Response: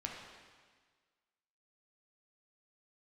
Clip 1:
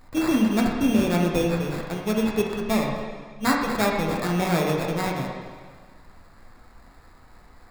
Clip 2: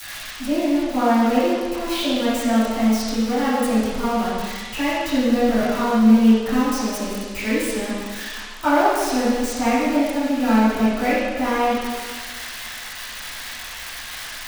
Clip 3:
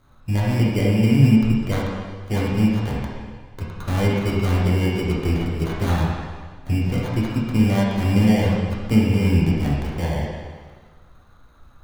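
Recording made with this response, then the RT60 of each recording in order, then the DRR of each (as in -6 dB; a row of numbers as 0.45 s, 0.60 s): 1; 1.5 s, 1.5 s, 1.5 s; -1.0 dB, -16.0 dB, -6.5 dB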